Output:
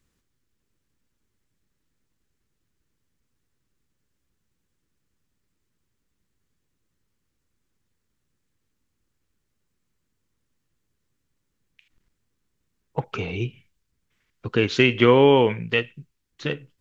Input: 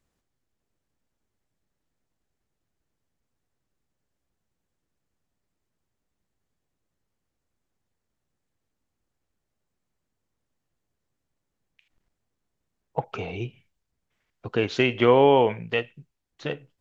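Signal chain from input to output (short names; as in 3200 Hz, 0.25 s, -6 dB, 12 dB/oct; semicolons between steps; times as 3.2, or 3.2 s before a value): bell 700 Hz -11 dB 0.83 oct; gain +5.5 dB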